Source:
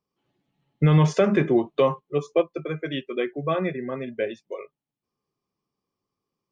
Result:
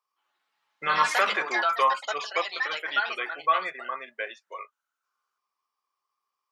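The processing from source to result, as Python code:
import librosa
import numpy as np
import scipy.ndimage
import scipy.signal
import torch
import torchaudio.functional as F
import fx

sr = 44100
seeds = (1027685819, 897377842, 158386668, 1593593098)

y = fx.highpass_res(x, sr, hz=1100.0, q=2.4)
y = fx.echo_pitch(y, sr, ms=206, semitones=4, count=3, db_per_echo=-3.0)
y = fx.end_taper(y, sr, db_per_s=510.0)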